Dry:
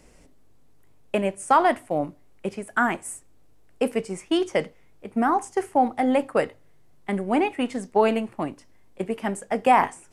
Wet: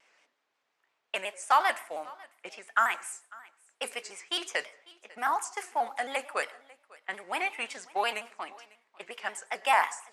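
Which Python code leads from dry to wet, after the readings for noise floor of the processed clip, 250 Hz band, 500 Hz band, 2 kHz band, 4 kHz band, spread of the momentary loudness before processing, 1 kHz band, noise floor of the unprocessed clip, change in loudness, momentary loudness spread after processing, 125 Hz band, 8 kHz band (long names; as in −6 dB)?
−79 dBFS, −25.5 dB, −14.0 dB, −1.0 dB, +1.5 dB, 14 LU, −6.0 dB, −54 dBFS, −6.5 dB, 20 LU, below −30 dB, −1.0 dB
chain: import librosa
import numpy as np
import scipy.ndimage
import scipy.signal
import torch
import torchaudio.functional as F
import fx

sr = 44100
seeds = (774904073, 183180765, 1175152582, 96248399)

y = fx.high_shelf(x, sr, hz=6100.0, db=9.0)
y = fx.env_lowpass(y, sr, base_hz=2800.0, full_db=-17.5)
y = scipy.signal.sosfilt(scipy.signal.butter(2, 1200.0, 'highpass', fs=sr, output='sos'), y)
y = fx.peak_eq(y, sr, hz=9600.0, db=-4.5, octaves=0.41)
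y = y + 10.0 ** (-23.0 / 20.0) * np.pad(y, (int(548 * sr / 1000.0), 0))[:len(y)]
y = fx.rev_plate(y, sr, seeds[0], rt60_s=0.54, hf_ratio=0.55, predelay_ms=80, drr_db=19.5)
y = fx.vibrato_shape(y, sr, shape='square', rate_hz=5.6, depth_cents=100.0)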